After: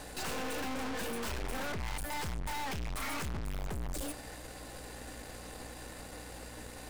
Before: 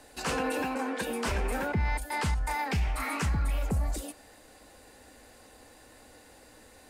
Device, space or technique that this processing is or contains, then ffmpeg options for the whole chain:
valve amplifier with mains hum: -af "aeval=exprs='(tanh(251*val(0)+0.75)-tanh(0.75))/251':c=same,aeval=exprs='val(0)+0.000794*(sin(2*PI*60*n/s)+sin(2*PI*2*60*n/s)/2+sin(2*PI*3*60*n/s)/3+sin(2*PI*4*60*n/s)/4+sin(2*PI*5*60*n/s)/5)':c=same,volume=11dB"

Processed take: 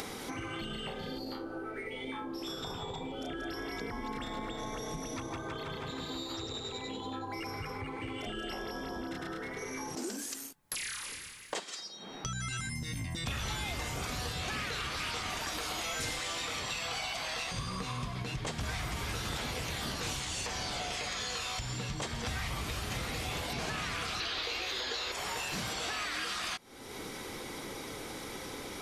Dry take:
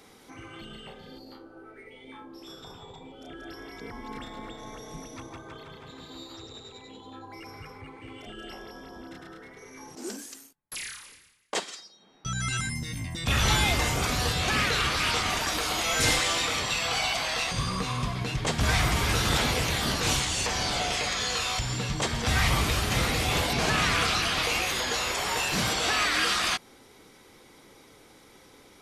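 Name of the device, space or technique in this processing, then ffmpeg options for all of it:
upward and downward compression: -filter_complex "[0:a]asettb=1/sr,asplit=3[a][b][c];[a]atrim=end=24.204[d];[b]atrim=start=24.2:end=25.12,asetpts=PTS-STARTPTS,afade=t=in:d=0.004:c=qsin,afade=t=out:st=0.916:d=0.004:c=qsin,equalizer=f=160:t=o:w=0.67:g=-11,equalizer=f=400:t=o:w=0.67:g=7,equalizer=f=1.6k:t=o:w=0.67:g=3,equalizer=f=4k:t=o:w=0.67:g=10,equalizer=f=10k:t=o:w=0.67:g=-11[e];[c]atrim=start=25.116[f];[d][e]acrossfade=d=0.004:c1=hsin:c2=qsin[g];[g][f]acrossfade=d=0.004:c1=qsin:c2=hsin,acompressor=mode=upward:threshold=-30dB:ratio=2.5,acompressor=threshold=-34dB:ratio=6"

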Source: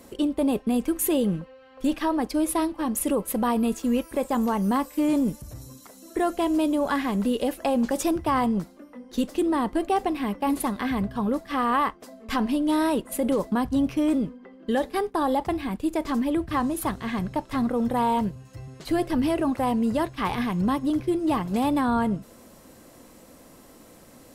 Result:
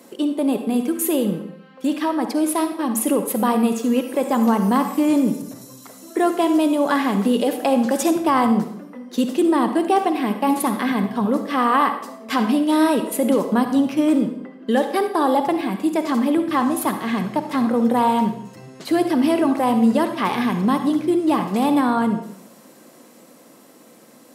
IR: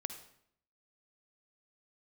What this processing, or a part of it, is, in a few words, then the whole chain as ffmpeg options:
far laptop microphone: -filter_complex "[1:a]atrim=start_sample=2205[a];[0:a][a]afir=irnorm=-1:irlink=0,highpass=f=170:w=0.5412,highpass=f=170:w=1.3066,dynaudnorm=f=440:g=13:m=3dB,volume=4dB"

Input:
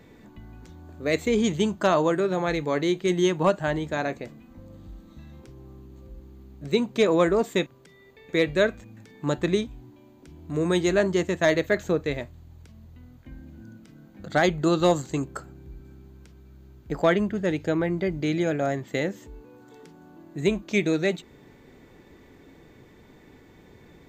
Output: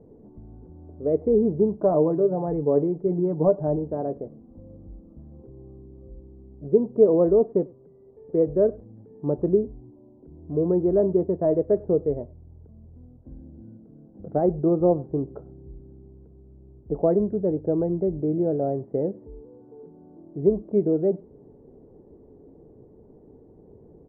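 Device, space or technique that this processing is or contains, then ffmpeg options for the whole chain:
under water: -filter_complex "[0:a]lowpass=f=720:w=0.5412,lowpass=f=720:w=1.3066,equalizer=f=430:t=o:w=0.36:g=6.5,equalizer=f=3k:t=o:w=0.77:g=-3,asplit=2[a][b];[b]adelay=99.13,volume=-25dB,highshelf=f=4k:g=-2.23[c];[a][c]amix=inputs=2:normalize=0,asettb=1/sr,asplit=3[d][e][f];[d]atrim=end=1.834[g];[e]atrim=start=1.83:end=3.76,asetpts=PTS-STARTPTS,afade=t=in:d=0.004:c=qsin,afade=t=out:st=1.926:d=0.004:c=qsin,aecho=1:1:6.9:0.48,atrim=end_sample=85113[h];[f]atrim=start=3.756[i];[g][h]acrossfade=d=0.004:c1=hsin:c2=qsin[j];[j][i]acrossfade=d=0.004:c1=qsin:c2=hsin"

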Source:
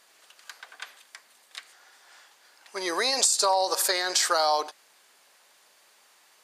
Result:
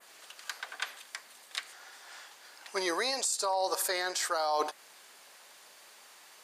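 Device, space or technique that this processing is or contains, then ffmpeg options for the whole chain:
compression on the reversed sound: -af "areverse,acompressor=threshold=-30dB:ratio=16,areverse,adynamicequalizer=threshold=0.00355:dfrequency=4800:dqfactor=0.8:tfrequency=4800:tqfactor=0.8:attack=5:release=100:ratio=0.375:range=2.5:mode=cutabove:tftype=bell,volume=4.5dB"

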